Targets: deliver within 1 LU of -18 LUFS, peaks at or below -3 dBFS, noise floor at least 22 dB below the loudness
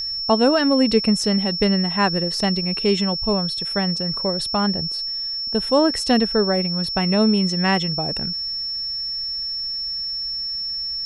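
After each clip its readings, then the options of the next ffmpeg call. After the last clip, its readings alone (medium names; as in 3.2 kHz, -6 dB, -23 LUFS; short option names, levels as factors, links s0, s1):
steady tone 5.4 kHz; tone level -24 dBFS; loudness -20.0 LUFS; peak level -4.5 dBFS; loudness target -18.0 LUFS
-> -af "bandreject=f=5400:w=30"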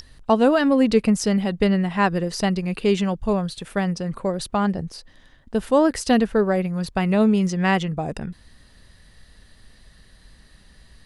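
steady tone not found; loudness -21.5 LUFS; peak level -5.5 dBFS; loudness target -18.0 LUFS
-> -af "volume=1.5,alimiter=limit=0.708:level=0:latency=1"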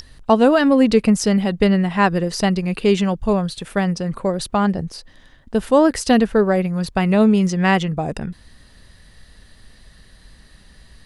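loudness -18.0 LUFS; peak level -3.0 dBFS; noise floor -49 dBFS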